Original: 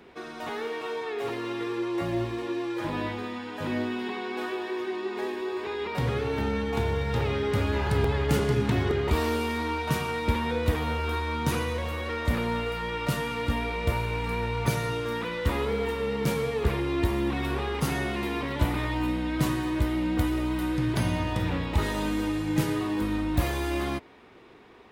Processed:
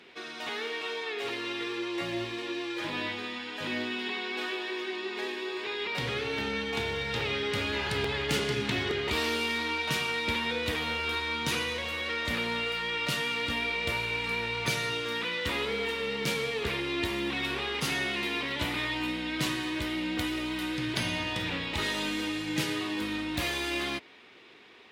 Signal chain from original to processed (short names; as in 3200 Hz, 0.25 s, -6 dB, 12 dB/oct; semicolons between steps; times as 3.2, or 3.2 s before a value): weighting filter D; gain -4.5 dB